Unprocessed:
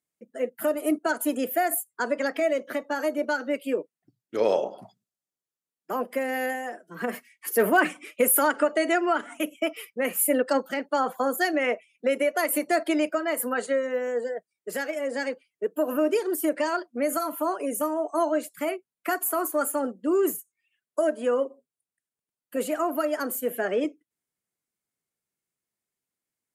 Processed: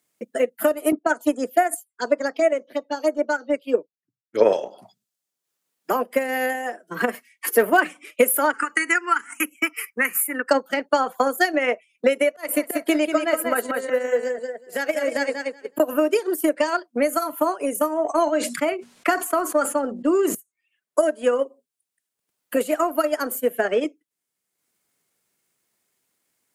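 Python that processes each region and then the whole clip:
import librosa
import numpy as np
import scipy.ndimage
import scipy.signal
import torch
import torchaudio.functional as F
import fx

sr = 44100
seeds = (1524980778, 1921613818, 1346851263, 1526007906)

y = fx.chain(x, sr, fx.lowpass(hz=9600.0, slope=12),
    fx.env_phaser(low_hz=470.0, high_hz=4300.0, full_db=-21.0),
    fx.band_widen(depth_pct=100), at=(0.92, 4.53))
y = fx.chain(y, sr, fx.tilt_shelf(db=-6.5, hz=880.0),
    fx.fixed_phaser(hz=1500.0, stages=4),
    fx.band_squash(depth_pct=40), at=(8.53, 10.51))
y = fx.chain(y, sr, fx.auto_swell(attack_ms=224.0),
    fx.echo_feedback(ms=186, feedback_pct=17, wet_db=-4.5), at=(12.29, 15.8))
y = fx.chain(y, sr, fx.lowpass(hz=7000.0, slope=12),
    fx.hum_notches(base_hz=60, count=4),
    fx.sustainer(db_per_s=56.0), at=(17.97, 20.35))
y = fx.low_shelf(y, sr, hz=150.0, db=-9.0)
y = fx.transient(y, sr, attack_db=6, sustain_db=-6)
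y = fx.band_squash(y, sr, depth_pct=40)
y = y * 10.0 ** (3.0 / 20.0)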